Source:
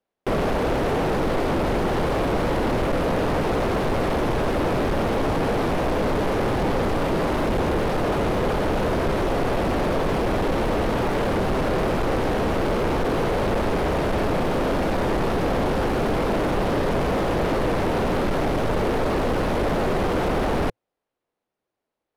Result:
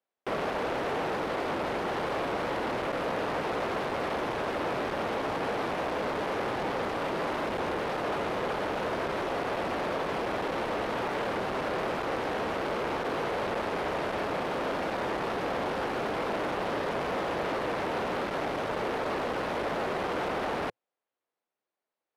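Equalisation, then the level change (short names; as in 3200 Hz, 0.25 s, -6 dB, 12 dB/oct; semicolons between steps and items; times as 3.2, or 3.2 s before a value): HPF 140 Hz 6 dB/oct; LPF 3700 Hz 6 dB/oct; low shelf 490 Hz -10.5 dB; -2.5 dB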